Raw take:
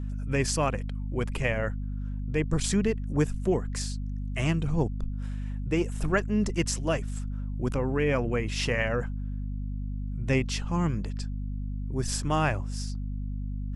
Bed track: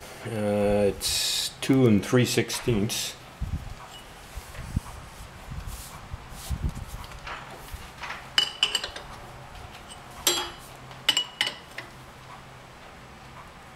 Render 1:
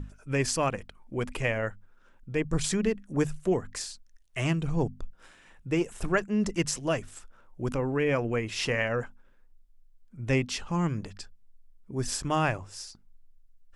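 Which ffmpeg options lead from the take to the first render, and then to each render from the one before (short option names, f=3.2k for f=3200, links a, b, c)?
-af "bandreject=f=50:t=h:w=6,bandreject=f=100:t=h:w=6,bandreject=f=150:t=h:w=6,bandreject=f=200:t=h:w=6,bandreject=f=250:t=h:w=6"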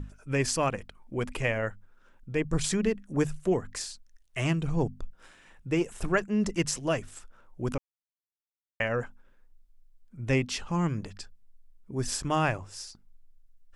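-filter_complex "[0:a]asplit=3[a][b][c];[a]atrim=end=7.78,asetpts=PTS-STARTPTS,afade=t=out:st=7.776:d=0.004:c=hsin[d];[b]atrim=start=7.78:end=8.8,asetpts=PTS-STARTPTS,volume=0[e];[c]atrim=start=8.8,asetpts=PTS-STARTPTS,afade=t=in:d=0.004:c=hsin[f];[d][e][f]concat=n=3:v=0:a=1"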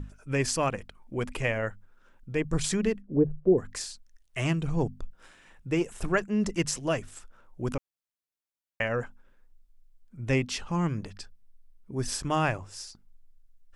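-filter_complex "[0:a]asplit=3[a][b][c];[a]afade=t=out:st=3.01:d=0.02[d];[b]lowpass=f=430:t=q:w=1.8,afade=t=in:st=3.01:d=0.02,afade=t=out:st=3.57:d=0.02[e];[c]afade=t=in:st=3.57:d=0.02[f];[d][e][f]amix=inputs=3:normalize=0,asettb=1/sr,asplit=3[g][h][i];[g]atrim=end=10.584[j];[h]atrim=start=10.58:end=12.22,asetpts=PTS-STARTPTS,afade=t=in:d=0.004:c=qsin,afade=t=out:st=1.636:d=0.004:c=qsin,bandreject=f=7.2k:w=12[k];[i]atrim=start=12.216[l];[j][k]acrossfade=d=0.004:c1=hsin:c2=qsin[m];[m][l]acrossfade=d=0.004:c1=qsin:c2=hsin"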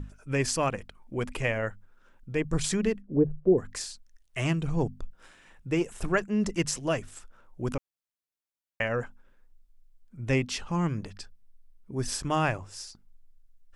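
-af anull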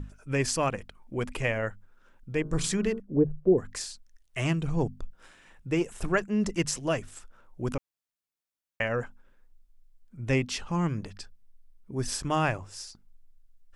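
-filter_complex "[0:a]asettb=1/sr,asplit=3[a][b][c];[a]atrim=end=2.404[d];[b]atrim=start=2.4:end=3,asetpts=PTS-STARTPTS,afade=t=in:d=0.004:c=qsin,afade=t=out:st=0.596:d=0.004:c=qsin,bandreject=f=56.74:t=h:w=4,bandreject=f=113.48:t=h:w=4,bandreject=f=170.22:t=h:w=4,bandreject=f=226.96:t=h:w=4,bandreject=f=283.7:t=h:w=4,bandreject=f=340.44:t=h:w=4,bandreject=f=397.18:t=h:w=4,bandreject=f=453.92:t=h:w=4,bandreject=f=510.66:t=h:w=4,bandreject=f=567.4:t=h:w=4,bandreject=f=624.14:t=h:w=4,bandreject=f=680.88:t=h:w=4,bandreject=f=737.62:t=h:w=4,bandreject=f=794.36:t=h:w=4,bandreject=f=851.1:t=h:w=4,bandreject=f=907.84:t=h:w=4,bandreject=f=964.58:t=h:w=4,bandreject=f=1.02132k:t=h:w=4,bandreject=f=1.07806k:t=h:w=4,bandreject=f=1.1348k:t=h:w=4,bandreject=f=1.19154k:t=h:w=4,bandreject=f=1.24828k:t=h:w=4,bandreject=f=1.30502k:t=h:w=4,bandreject=f=1.36176k:t=h:w=4,bandreject=f=1.4185k:t=h:w=4,bandreject=f=1.47524k:t=h:w=4,bandreject=f=1.53198k:t=h:w=4[e];[c]atrim=start=2.996[f];[d][e]acrossfade=d=0.004:c1=hsin:c2=qsin[g];[g][f]acrossfade=d=0.004:c1=qsin:c2=hsin"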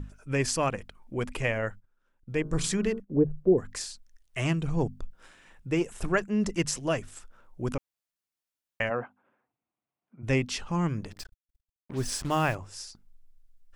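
-filter_complex "[0:a]asettb=1/sr,asplit=3[a][b][c];[a]atrim=end=1.514[d];[b]atrim=start=1.51:end=3.44,asetpts=PTS-STARTPTS,afade=t=in:d=0.004:c=qsin,afade=t=out:st=1.926:d=0.004:c=qsin,agate=range=-14dB:threshold=-48dB:ratio=16:release=100:detection=peak[e];[c]atrim=start=3.436[f];[d][e]acrossfade=d=0.004:c1=hsin:c2=qsin[g];[g][f]acrossfade=d=0.004:c1=qsin:c2=hsin,asplit=3[h][i][j];[h]afade=t=out:st=8.89:d=0.02[k];[i]highpass=f=140:w=0.5412,highpass=f=140:w=1.3066,equalizer=f=170:t=q:w=4:g=-9,equalizer=f=460:t=q:w=4:g=-3,equalizer=f=740:t=q:w=4:g=7,equalizer=f=1.1k:t=q:w=4:g=4,equalizer=f=1.7k:t=q:w=4:g=-5,lowpass=f=2.6k:w=0.5412,lowpass=f=2.6k:w=1.3066,afade=t=in:st=8.89:d=0.02,afade=t=out:st=10.22:d=0.02[l];[j]afade=t=in:st=10.22:d=0.02[m];[k][l][m]amix=inputs=3:normalize=0,asettb=1/sr,asplit=3[n][o][p];[n]atrim=end=11.114[q];[o]atrim=start=11.11:end=12.55,asetpts=PTS-STARTPTS,afade=t=in:d=0.004:c=qsin,afade=t=out:st=1.436:d=0.004:c=qsin,acrusher=bits=6:mix=0:aa=0.5[r];[p]atrim=start=12.546[s];[q][r]acrossfade=d=0.004:c1=hsin:c2=qsin[t];[t][s]acrossfade=d=0.004:c1=qsin:c2=hsin"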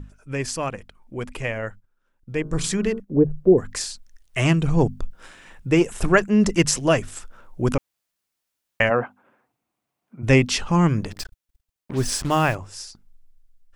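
-af "dynaudnorm=f=910:g=7:m=11.5dB"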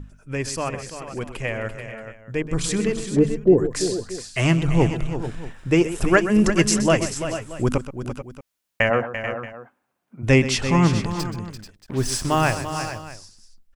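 -af "aecho=1:1:127|340|435|444|629:0.224|0.299|0.237|0.112|0.112"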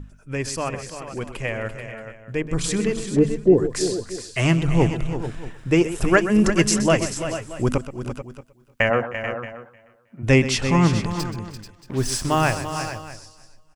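-af "aecho=1:1:310|620|930:0.075|0.0292|0.0114"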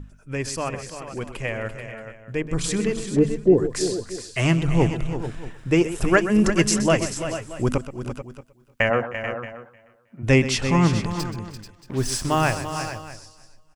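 -af "volume=-1dB"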